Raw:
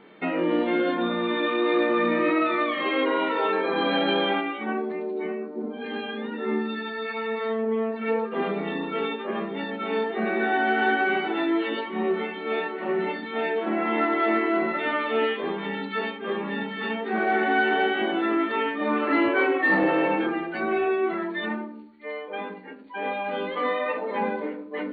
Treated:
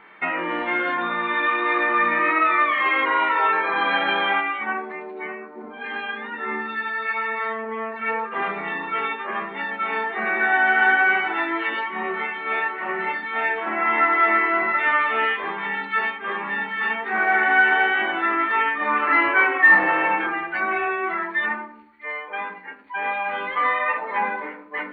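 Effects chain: graphic EQ 125/250/500/1000/2000/4000 Hz -8/-9/-8/+6/+8/-8 dB; trim +2.5 dB

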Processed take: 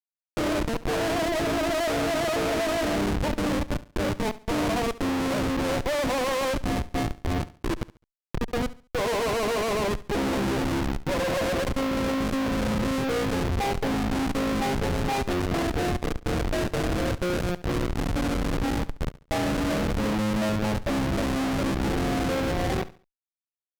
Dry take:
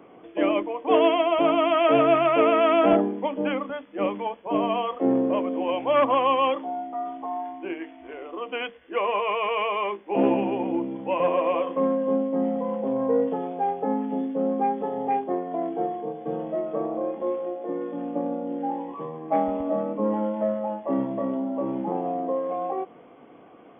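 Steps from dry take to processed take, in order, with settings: 15.12–15.65 s: square wave that keeps the level; peaking EQ 1.6 kHz -14 dB 0.74 oct; filtered feedback delay 474 ms, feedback 20%, low-pass 1.2 kHz, level -23 dB; Schmitt trigger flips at -28 dBFS; distance through air 61 m; Chebyshev shaper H 6 -15 dB, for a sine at -20 dBFS; feedback delay 70 ms, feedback 31%, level -17.5 dB; trim +1 dB

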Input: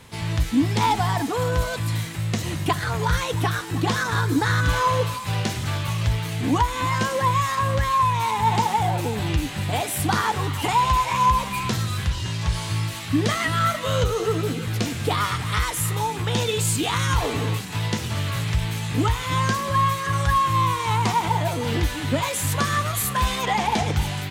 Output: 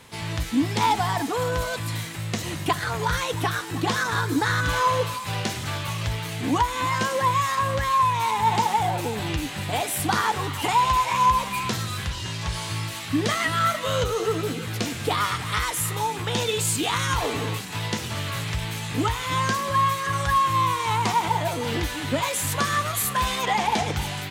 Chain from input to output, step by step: bass shelf 170 Hz -8 dB

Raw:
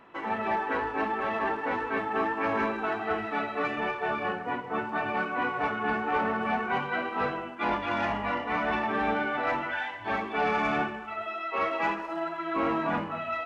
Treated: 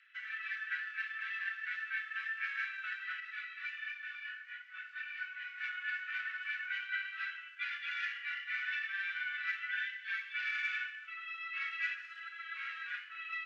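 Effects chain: steep high-pass 1.5 kHz 72 dB/octave; distance through air 98 m; 3.20–5.58 s: detune thickener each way 22 cents; trim -1 dB

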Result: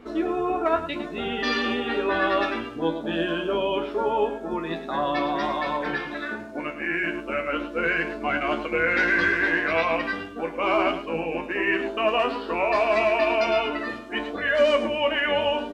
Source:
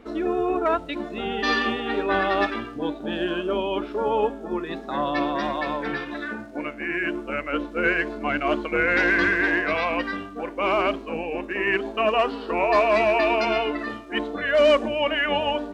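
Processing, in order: in parallel at +1.5 dB: peak limiter -17.5 dBFS, peak gain reduction 8 dB; on the sum: feedback comb 82 Hz, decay 0.17 s, harmonics all, mix 90%; delay 106 ms -12 dB

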